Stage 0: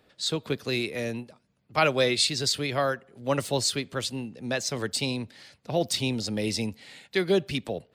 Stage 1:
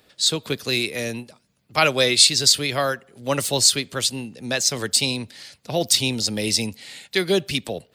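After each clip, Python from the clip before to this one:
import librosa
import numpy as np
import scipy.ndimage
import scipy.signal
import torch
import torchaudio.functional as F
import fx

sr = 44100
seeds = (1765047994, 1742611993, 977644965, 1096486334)

y = fx.high_shelf(x, sr, hz=3200.0, db=11.5)
y = y * librosa.db_to_amplitude(2.5)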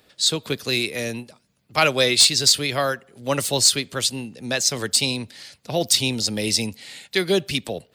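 y = np.clip(10.0 ** (6.5 / 20.0) * x, -1.0, 1.0) / 10.0 ** (6.5 / 20.0)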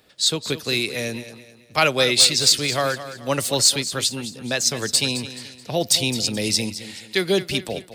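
y = fx.echo_feedback(x, sr, ms=215, feedback_pct=38, wet_db=-13)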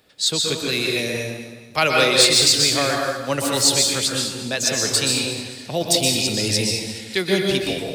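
y = fx.rev_plate(x, sr, seeds[0], rt60_s=0.94, hf_ratio=0.75, predelay_ms=110, drr_db=-0.5)
y = y * librosa.db_to_amplitude(-1.0)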